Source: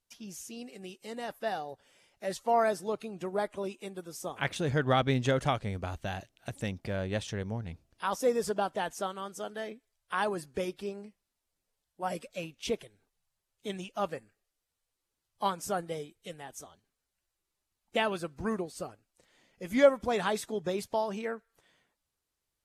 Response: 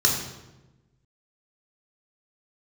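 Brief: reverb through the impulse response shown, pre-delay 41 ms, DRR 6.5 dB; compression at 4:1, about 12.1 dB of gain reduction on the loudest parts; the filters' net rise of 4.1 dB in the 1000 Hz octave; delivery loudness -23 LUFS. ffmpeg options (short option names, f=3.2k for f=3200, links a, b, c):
-filter_complex "[0:a]equalizer=f=1k:t=o:g=5.5,acompressor=threshold=-28dB:ratio=4,asplit=2[a][b];[1:a]atrim=start_sample=2205,adelay=41[c];[b][c]afir=irnorm=-1:irlink=0,volume=-20.5dB[d];[a][d]amix=inputs=2:normalize=0,volume=11.5dB"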